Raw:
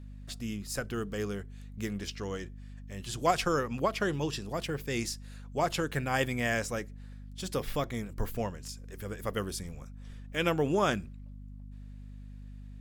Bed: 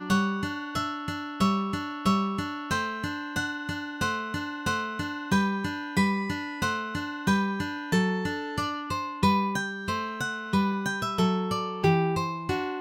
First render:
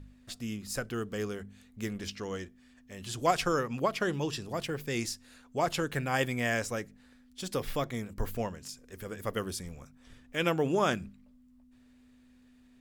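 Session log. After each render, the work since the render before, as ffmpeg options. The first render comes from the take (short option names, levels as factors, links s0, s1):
-af "bandreject=f=50:t=h:w=4,bandreject=f=100:t=h:w=4,bandreject=f=150:t=h:w=4,bandreject=f=200:t=h:w=4"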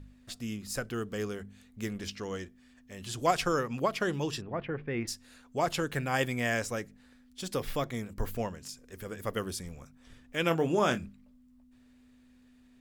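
-filter_complex "[0:a]asplit=3[s0][s1][s2];[s0]afade=t=out:st=4.4:d=0.02[s3];[s1]lowpass=f=2300:w=0.5412,lowpass=f=2300:w=1.3066,afade=t=in:st=4.4:d=0.02,afade=t=out:st=5.07:d=0.02[s4];[s2]afade=t=in:st=5.07:d=0.02[s5];[s3][s4][s5]amix=inputs=3:normalize=0,asettb=1/sr,asplit=3[s6][s7][s8];[s6]atrim=end=10.484[s9];[s7]atrim=start=10.48:end=11.05,asetpts=PTS-STARTPTS,afade=t=in:d=0.004:c=qsin,afade=t=out:st=0.566:d=0.004:c=qsin,asplit=2[s10][s11];[s11]adelay=24,volume=0.355[s12];[s10][s12]amix=inputs=2:normalize=0,atrim=end_sample=25137[s13];[s8]atrim=start=11.046[s14];[s9][s13]acrossfade=d=0.004:c1=hsin:c2=qsin[s15];[s15][s14]acrossfade=d=0.004:c1=qsin:c2=hsin"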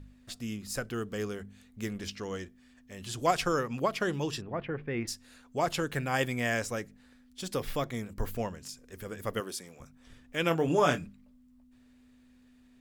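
-filter_complex "[0:a]asettb=1/sr,asplit=3[s0][s1][s2];[s0]atrim=end=9.404[s3];[s1]atrim=start=9.4:end=9.8,asetpts=PTS-STARTPTS,afade=t=in:d=0.004:c=qsin,afade=t=out:st=0.396:d=0.004:c=qsin,highpass=290[s4];[s2]atrim=start=9.796[s5];[s3][s4]acrossfade=d=0.004:c1=hsin:c2=qsin[s6];[s6][s5]acrossfade=d=0.004:c1=qsin:c2=hsin,asettb=1/sr,asplit=3[s7][s8][s9];[s7]atrim=end=10.674[s10];[s8]atrim=start=10.67:end=11.07,asetpts=PTS-STARTPTS,afade=t=in:d=0.004:c=qsin,afade=t=out:st=0.396:d=0.004:c=qsin,aecho=1:1:6.9:0.65,atrim=end_sample=17640[s11];[s9]atrim=start=11.066[s12];[s10][s11]acrossfade=d=0.004:c1=hsin:c2=qsin[s13];[s13][s12]acrossfade=d=0.004:c1=qsin:c2=hsin"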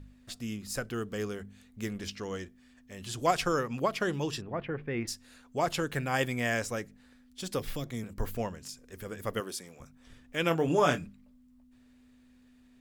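-filter_complex "[0:a]asettb=1/sr,asplit=3[s0][s1][s2];[s0]atrim=end=7.594[s3];[s1]atrim=start=7.59:end=8.04,asetpts=PTS-STARTPTS,afade=t=in:d=0.004:c=qsin,afade=t=out:st=0.446:d=0.004:c=qsin,acrossover=split=390|3000[s4][s5][s6];[s5]acompressor=threshold=0.00562:ratio=6:attack=3.2:release=140:knee=2.83:detection=peak[s7];[s4][s7][s6]amix=inputs=3:normalize=0[s8];[s2]atrim=start=8.036[s9];[s3][s8]acrossfade=d=0.004:c1=hsin:c2=qsin[s10];[s10][s9]acrossfade=d=0.004:c1=qsin:c2=hsin"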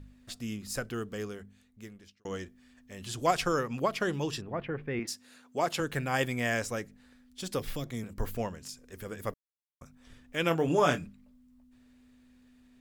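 -filter_complex "[0:a]asettb=1/sr,asplit=3[s0][s1][s2];[s0]atrim=end=4.994[s3];[s1]atrim=start=4.99:end=5.8,asetpts=PTS-STARTPTS,afade=t=in:d=0.004:c=qsin,afade=t=out:st=0.806:d=0.004:c=qsin,highpass=180[s4];[s2]atrim=start=5.796[s5];[s3][s4]acrossfade=d=0.004:c1=hsin:c2=qsin[s6];[s6][s5]acrossfade=d=0.004:c1=qsin:c2=hsin,asplit=4[s7][s8][s9][s10];[s7]atrim=end=2.25,asetpts=PTS-STARTPTS,afade=t=out:st=0.84:d=1.41[s11];[s8]atrim=start=2.25:end=9.34,asetpts=PTS-STARTPTS,afade=t=in:d=0.004:c=hsin,afade=t=out:st=7.086:d=0.004:c=hsin[s12];[s9]atrim=start=9.34:end=9.81,asetpts=PTS-STARTPTS,volume=0[s13];[s10]atrim=start=9.81,asetpts=PTS-STARTPTS,afade=t=in:d=0.004:c=hsin[s14];[s11][s12][s13][s14]concat=n=4:v=0:a=1"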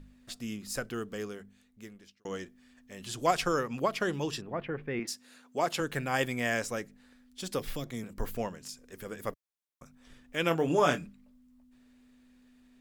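-af "equalizer=f=80:t=o:w=0.76:g=-12"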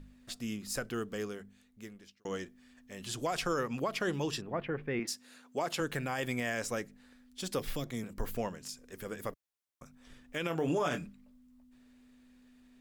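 -af "alimiter=limit=0.0708:level=0:latency=1:release=75"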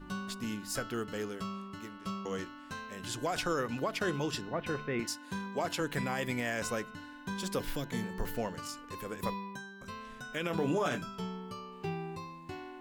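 -filter_complex "[1:a]volume=0.178[s0];[0:a][s0]amix=inputs=2:normalize=0"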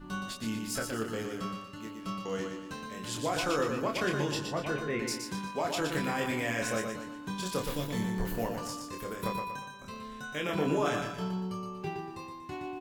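-filter_complex "[0:a]asplit=2[s0][s1];[s1]adelay=27,volume=0.631[s2];[s0][s2]amix=inputs=2:normalize=0,aecho=1:1:119|238|357|476|595:0.531|0.223|0.0936|0.0393|0.0165"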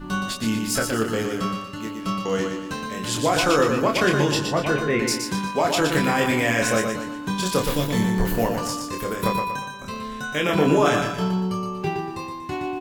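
-af "volume=3.55"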